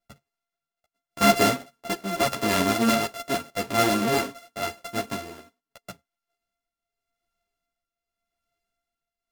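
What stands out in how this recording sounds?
a buzz of ramps at a fixed pitch in blocks of 64 samples; tremolo triangle 0.85 Hz, depth 70%; a shimmering, thickened sound

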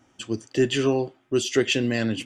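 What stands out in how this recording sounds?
noise floor -64 dBFS; spectral tilt -4.5 dB/oct

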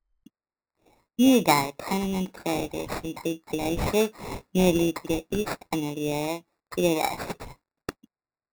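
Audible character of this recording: aliases and images of a low sample rate 3100 Hz, jitter 0%

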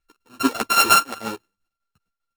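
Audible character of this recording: a buzz of ramps at a fixed pitch in blocks of 32 samples; tremolo saw down 5 Hz, depth 75%; a shimmering, thickened sound

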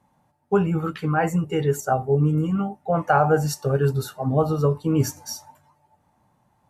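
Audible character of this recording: noise floor -66 dBFS; spectral tilt -5.5 dB/oct

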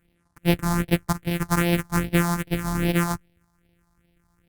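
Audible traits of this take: a buzz of ramps at a fixed pitch in blocks of 256 samples; phasing stages 4, 2.5 Hz, lowest notch 440–1200 Hz; Opus

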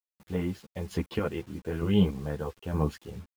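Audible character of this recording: chopped level 1.1 Hz, depth 60%, duty 30%; a quantiser's noise floor 10-bit, dither none; a shimmering, thickened sound

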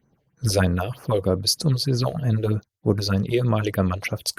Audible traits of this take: phasing stages 4, 3.2 Hz, lowest notch 170–3700 Hz; Opus

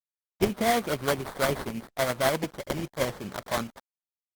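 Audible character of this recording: aliases and images of a low sample rate 2700 Hz, jitter 20%; tremolo triangle 12 Hz, depth 45%; a quantiser's noise floor 8-bit, dither none; Opus

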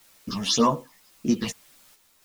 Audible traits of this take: phasing stages 6, 1.8 Hz, lowest notch 300–4300 Hz; a quantiser's noise floor 10-bit, dither triangular; random-step tremolo 3.6 Hz; a shimmering, thickened sound

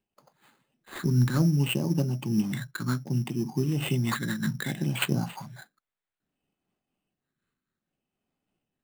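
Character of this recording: phasing stages 8, 0.63 Hz, lowest notch 740–1900 Hz; aliases and images of a low sample rate 5600 Hz, jitter 0%; noise-modulated level

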